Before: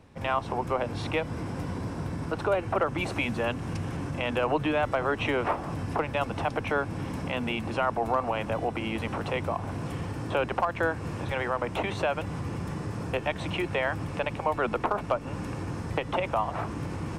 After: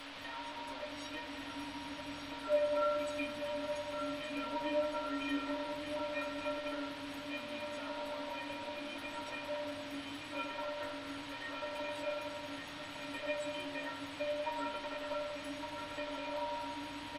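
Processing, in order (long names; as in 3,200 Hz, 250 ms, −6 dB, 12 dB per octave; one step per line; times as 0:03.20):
high-shelf EQ 4,800 Hz +9.5 dB
delay with a low-pass on its return 93 ms, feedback 69%, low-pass 1,300 Hz, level −5 dB
upward compression, threshold −26 dBFS
stiff-string resonator 280 Hz, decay 0.53 s, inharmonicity 0.03
single-tap delay 1,165 ms −7 dB
noise in a band 470–3,900 Hz −52 dBFS
level +2.5 dB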